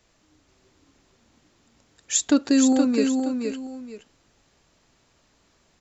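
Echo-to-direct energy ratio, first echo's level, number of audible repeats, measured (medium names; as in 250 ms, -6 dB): -4.5 dB, -5.0 dB, 2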